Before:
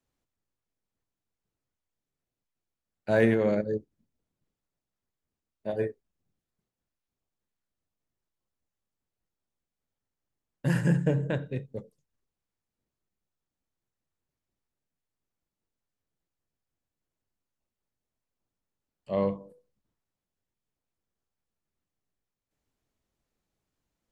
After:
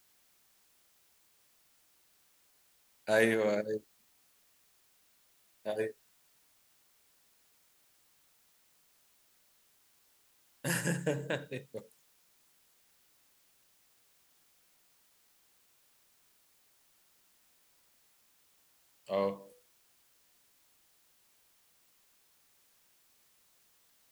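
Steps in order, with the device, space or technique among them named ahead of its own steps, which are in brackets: turntable without a phono preamp (RIAA curve recording; white noise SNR 27 dB); trim -1.5 dB

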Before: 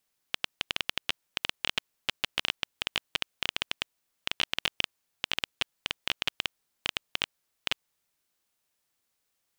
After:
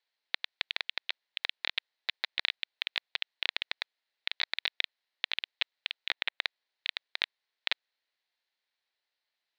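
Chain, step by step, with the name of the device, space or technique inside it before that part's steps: voice changer toy (ring modulator with a swept carrier 530 Hz, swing 25%, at 0.45 Hz; cabinet simulation 570–4400 Hz, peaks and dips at 1.2 kHz -6 dB, 1.9 kHz +5 dB, 4.1 kHz +7 dB); 5.96–6.42 s: low-pass that closes with the level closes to 2.6 kHz, closed at -31 dBFS

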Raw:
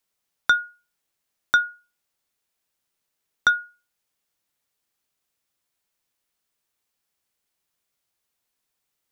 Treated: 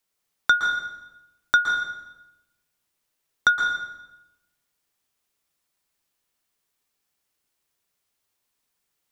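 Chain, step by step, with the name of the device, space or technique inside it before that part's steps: bathroom (reverberation RT60 1.0 s, pre-delay 112 ms, DRR 2.5 dB)

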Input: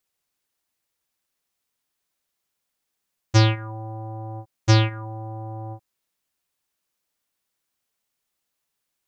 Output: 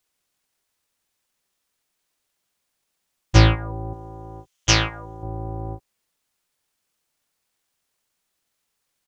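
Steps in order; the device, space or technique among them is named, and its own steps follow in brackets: 3.93–5.23 s: fifteen-band graphic EQ 100 Hz -10 dB, 250 Hz -12 dB, 630 Hz -9 dB, 6.3 kHz +11 dB; octave pedal (harmony voices -12 st -2 dB); trim +1.5 dB

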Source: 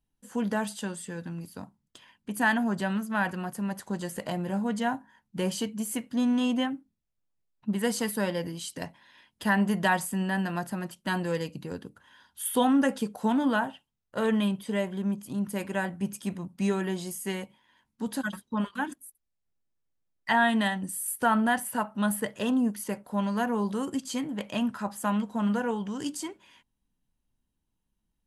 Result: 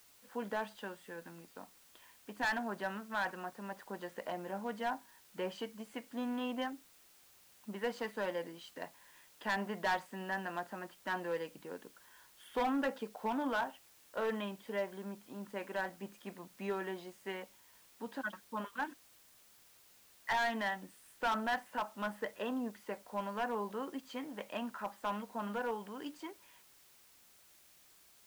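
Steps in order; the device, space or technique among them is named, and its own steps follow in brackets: aircraft radio (band-pass 400–2400 Hz; hard clipper -24 dBFS, distortion -11 dB; white noise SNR 23 dB); trim -4.5 dB

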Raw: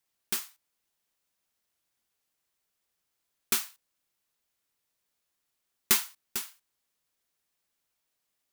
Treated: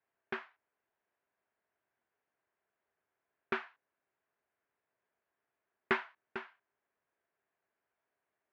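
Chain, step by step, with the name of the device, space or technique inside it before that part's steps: bass cabinet (cabinet simulation 83–2300 Hz, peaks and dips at 170 Hz -3 dB, 400 Hz +8 dB, 660 Hz +8 dB, 970 Hz +4 dB, 1.6 kHz +6 dB); trim -1.5 dB

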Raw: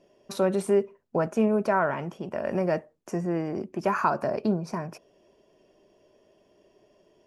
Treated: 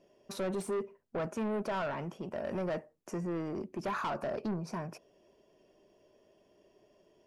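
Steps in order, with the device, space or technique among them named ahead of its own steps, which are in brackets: saturation between pre-emphasis and de-emphasis (treble shelf 5.2 kHz +11.5 dB; saturation -26 dBFS, distortion -8 dB; treble shelf 5.2 kHz -11.5 dB); trim -4 dB

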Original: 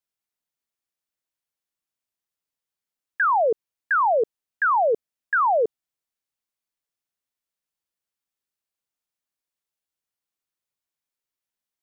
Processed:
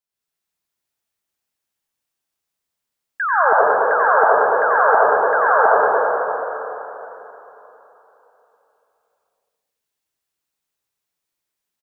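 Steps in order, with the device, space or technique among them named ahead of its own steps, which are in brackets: cave (delay 219 ms -8.5 dB; reverberation RT60 3.5 s, pre-delay 88 ms, DRR -8 dB); trim -1.5 dB

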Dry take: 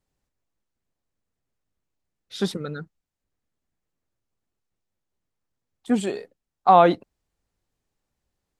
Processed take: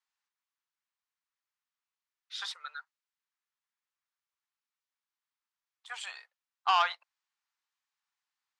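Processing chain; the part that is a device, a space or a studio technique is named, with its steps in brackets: steep high-pass 940 Hz 36 dB/octave; public-address speaker with an overloaded transformer (transformer saturation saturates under 2.1 kHz; band-pass 270–6000 Hz); trim -2 dB

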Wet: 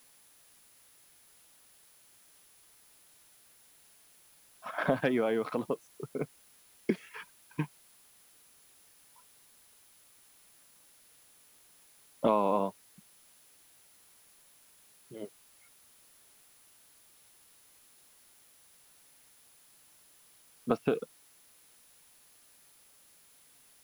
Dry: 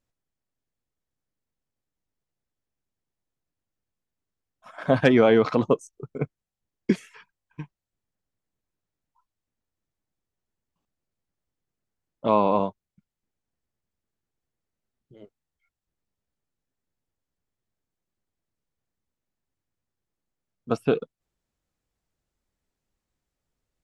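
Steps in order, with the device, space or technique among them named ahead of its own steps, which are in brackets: medium wave at night (band-pass 170–4000 Hz; compression 4:1, threshold -33 dBFS, peak gain reduction 16.5 dB; tremolo 0.25 Hz, depth 56%; whistle 10 kHz -72 dBFS; white noise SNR 23 dB); trim +8 dB

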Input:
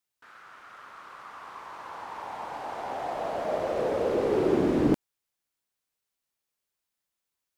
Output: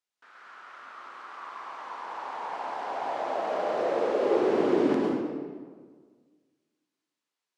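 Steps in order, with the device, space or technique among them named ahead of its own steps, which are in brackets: supermarket ceiling speaker (band-pass 280–6800 Hz; reverberation RT60 1.6 s, pre-delay 99 ms, DRR -2.5 dB); trim -2.5 dB

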